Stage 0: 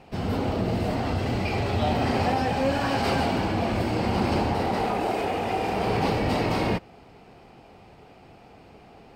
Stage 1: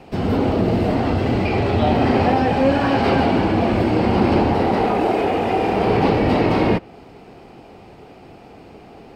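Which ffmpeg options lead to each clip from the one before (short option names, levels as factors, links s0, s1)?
-filter_complex "[0:a]equalizer=f=330:t=o:w=1.3:g=5,acrossover=split=430|4100[s0][s1][s2];[s2]acompressor=threshold=0.00158:ratio=5[s3];[s0][s1][s3]amix=inputs=3:normalize=0,volume=1.88"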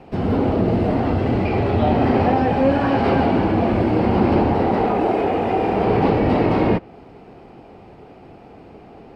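-af "highshelf=f=3200:g=-11"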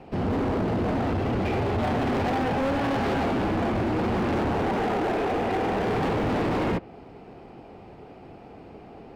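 -af "volume=10.6,asoftclip=hard,volume=0.0944,volume=0.75"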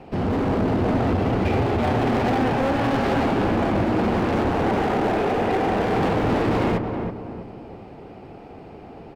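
-filter_complex "[0:a]asplit=2[s0][s1];[s1]adelay=323,lowpass=f=1200:p=1,volume=0.562,asplit=2[s2][s3];[s3]adelay=323,lowpass=f=1200:p=1,volume=0.42,asplit=2[s4][s5];[s5]adelay=323,lowpass=f=1200:p=1,volume=0.42,asplit=2[s6][s7];[s7]adelay=323,lowpass=f=1200:p=1,volume=0.42,asplit=2[s8][s9];[s9]adelay=323,lowpass=f=1200:p=1,volume=0.42[s10];[s0][s2][s4][s6][s8][s10]amix=inputs=6:normalize=0,volume=1.41"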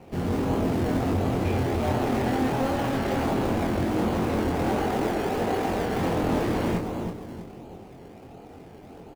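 -filter_complex "[0:a]asplit=2[s0][s1];[s1]acrusher=samples=24:mix=1:aa=0.000001:lfo=1:lforange=24:lforate=1.4,volume=0.447[s2];[s0][s2]amix=inputs=2:normalize=0,asplit=2[s3][s4];[s4]adelay=23,volume=0.596[s5];[s3][s5]amix=inputs=2:normalize=0,volume=0.398"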